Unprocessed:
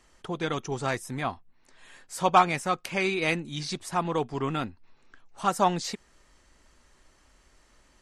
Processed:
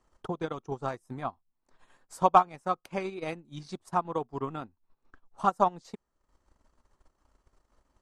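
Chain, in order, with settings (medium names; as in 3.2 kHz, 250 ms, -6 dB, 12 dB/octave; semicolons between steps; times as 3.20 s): transient shaper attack +10 dB, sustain -11 dB; resonant high shelf 1.5 kHz -7.5 dB, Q 1.5; trim -8.5 dB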